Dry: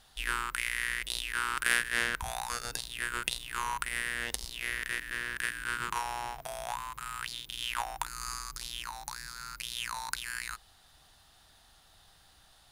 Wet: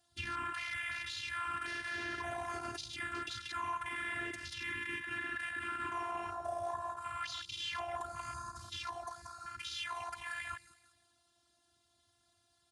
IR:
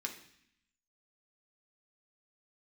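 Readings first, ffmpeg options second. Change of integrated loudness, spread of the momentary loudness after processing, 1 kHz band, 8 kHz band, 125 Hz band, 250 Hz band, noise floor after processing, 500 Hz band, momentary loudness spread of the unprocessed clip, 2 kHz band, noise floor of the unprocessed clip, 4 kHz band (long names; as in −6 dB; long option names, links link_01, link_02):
−5.5 dB, 5 LU, −2.5 dB, −14.0 dB, −3.0 dB, +1.0 dB, −75 dBFS, +1.5 dB, 9 LU, −6.5 dB, −61 dBFS, −6.5 dB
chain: -filter_complex "[0:a]lowpass=frequency=10000:width=0.5412,lowpass=frequency=10000:width=1.3066,aecho=1:1:183|366|549|732:0.398|0.151|0.0575|0.0218,afftfilt=real='hypot(re,im)*cos(2*PI*random(0))':imag='hypot(re,im)*sin(2*PI*random(1))':win_size=512:overlap=0.75,aeval=exprs='0.1*(cos(1*acos(clip(val(0)/0.1,-1,1)))-cos(1*PI/2))+0.00282*(cos(4*acos(clip(val(0)/0.1,-1,1)))-cos(4*PI/2))':channel_layout=same,asplit=2[link_01][link_02];[link_02]acompressor=threshold=-51dB:ratio=6,volume=-1.5dB[link_03];[link_01][link_03]amix=inputs=2:normalize=0,afwtdn=0.00631,highshelf=frequency=2400:gain=-12,acrossover=split=260[link_04][link_05];[link_05]acompressor=threshold=-39dB:ratio=6[link_06];[link_04][link_06]amix=inputs=2:normalize=0,afftfilt=real='hypot(re,im)*cos(PI*b)':imag='0':win_size=512:overlap=0.75,highpass=frequency=94:width=0.5412,highpass=frequency=94:width=1.3066,bass=frequency=250:gain=12,treble=frequency=4000:gain=13,alimiter=level_in=12.5dB:limit=-24dB:level=0:latency=1:release=30,volume=-12.5dB,volume=9dB"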